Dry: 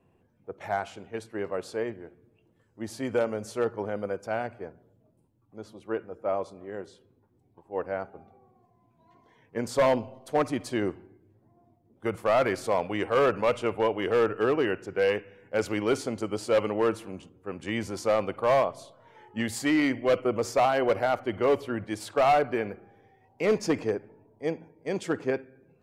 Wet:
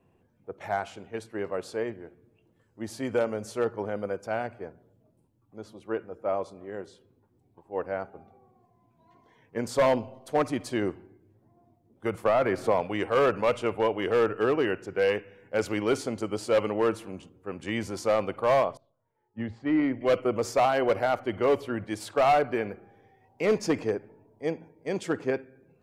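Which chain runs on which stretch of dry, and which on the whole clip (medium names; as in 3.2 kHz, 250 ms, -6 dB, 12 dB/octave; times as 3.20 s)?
12.25–12.81 s: peaking EQ 7.5 kHz -8.5 dB 2.7 oct + three bands compressed up and down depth 100%
18.77–20.01 s: tape spacing loss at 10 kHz 44 dB + three bands expanded up and down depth 70%
whole clip: none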